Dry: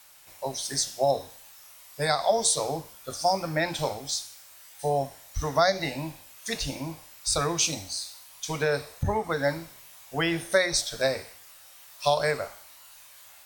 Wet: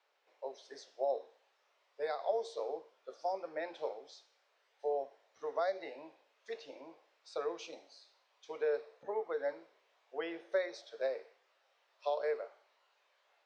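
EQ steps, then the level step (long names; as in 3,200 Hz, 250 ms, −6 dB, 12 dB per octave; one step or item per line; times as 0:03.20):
four-pole ladder high-pass 390 Hz, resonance 60%
high-frequency loss of the air 190 metres
high-shelf EQ 8,200 Hz −10.5 dB
−4.5 dB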